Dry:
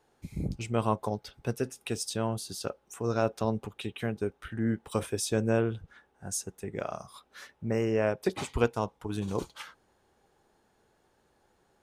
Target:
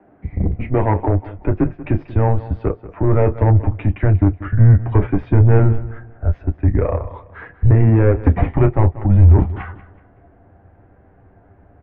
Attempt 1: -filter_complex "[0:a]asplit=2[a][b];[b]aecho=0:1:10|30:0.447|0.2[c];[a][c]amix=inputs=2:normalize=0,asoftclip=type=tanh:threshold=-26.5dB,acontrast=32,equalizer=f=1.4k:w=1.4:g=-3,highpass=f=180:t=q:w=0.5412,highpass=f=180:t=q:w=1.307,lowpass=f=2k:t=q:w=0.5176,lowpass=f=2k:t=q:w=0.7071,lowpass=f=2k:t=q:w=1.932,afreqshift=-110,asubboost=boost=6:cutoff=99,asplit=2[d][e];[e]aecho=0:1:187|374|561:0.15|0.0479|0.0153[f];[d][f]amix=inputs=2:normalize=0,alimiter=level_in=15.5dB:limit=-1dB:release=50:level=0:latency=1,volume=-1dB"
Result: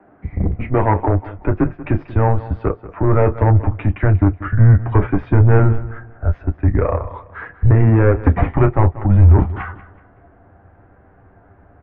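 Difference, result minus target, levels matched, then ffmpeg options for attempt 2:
1000 Hz band +3.0 dB
-filter_complex "[0:a]asplit=2[a][b];[b]aecho=0:1:10|30:0.447|0.2[c];[a][c]amix=inputs=2:normalize=0,asoftclip=type=tanh:threshold=-26.5dB,acontrast=32,equalizer=f=1.4k:w=1.4:g=-9.5,highpass=f=180:t=q:w=0.5412,highpass=f=180:t=q:w=1.307,lowpass=f=2k:t=q:w=0.5176,lowpass=f=2k:t=q:w=0.7071,lowpass=f=2k:t=q:w=1.932,afreqshift=-110,asubboost=boost=6:cutoff=99,asplit=2[d][e];[e]aecho=0:1:187|374|561:0.15|0.0479|0.0153[f];[d][f]amix=inputs=2:normalize=0,alimiter=level_in=15.5dB:limit=-1dB:release=50:level=0:latency=1,volume=-1dB"

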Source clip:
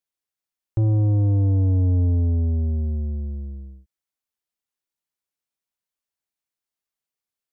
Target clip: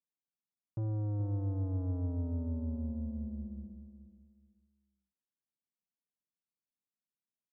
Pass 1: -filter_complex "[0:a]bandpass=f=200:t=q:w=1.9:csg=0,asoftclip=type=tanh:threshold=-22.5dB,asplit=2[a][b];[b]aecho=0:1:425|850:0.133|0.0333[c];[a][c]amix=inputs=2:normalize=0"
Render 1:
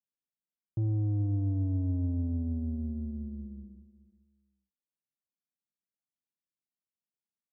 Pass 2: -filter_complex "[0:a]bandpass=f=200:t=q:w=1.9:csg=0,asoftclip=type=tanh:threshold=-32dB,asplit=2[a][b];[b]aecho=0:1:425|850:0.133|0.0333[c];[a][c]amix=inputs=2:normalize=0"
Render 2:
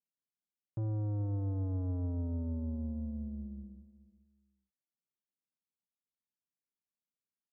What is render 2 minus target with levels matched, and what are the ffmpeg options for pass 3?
echo-to-direct -7 dB
-filter_complex "[0:a]bandpass=f=200:t=q:w=1.9:csg=0,asoftclip=type=tanh:threshold=-32dB,asplit=2[a][b];[b]aecho=0:1:425|850|1275:0.299|0.0746|0.0187[c];[a][c]amix=inputs=2:normalize=0"

